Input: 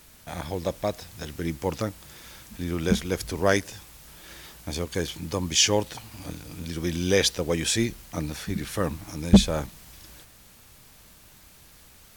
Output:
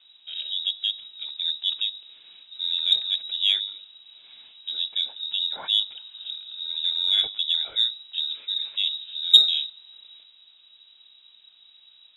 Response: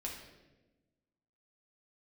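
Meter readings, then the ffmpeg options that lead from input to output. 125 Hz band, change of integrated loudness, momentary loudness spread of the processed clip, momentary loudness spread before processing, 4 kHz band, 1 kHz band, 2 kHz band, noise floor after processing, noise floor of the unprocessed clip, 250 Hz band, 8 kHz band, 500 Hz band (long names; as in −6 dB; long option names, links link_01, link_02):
below −40 dB, +3.0 dB, 14 LU, 23 LU, +11.5 dB, −15.5 dB, −10.5 dB, −56 dBFS, −53 dBFS, below −35 dB, below −20 dB, below −25 dB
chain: -af "bandreject=frequency=99.67:width_type=h:width=4,bandreject=frequency=199.34:width_type=h:width=4,bandreject=frequency=299.01:width_type=h:width=4,bandreject=frequency=398.68:width_type=h:width=4,bandreject=frequency=498.35:width_type=h:width=4,lowpass=frequency=3300:width_type=q:width=0.5098,lowpass=frequency=3300:width_type=q:width=0.6013,lowpass=frequency=3300:width_type=q:width=0.9,lowpass=frequency=3300:width_type=q:width=2.563,afreqshift=-3900,aexciter=amount=9.3:drive=3.3:freq=3000,volume=-13.5dB"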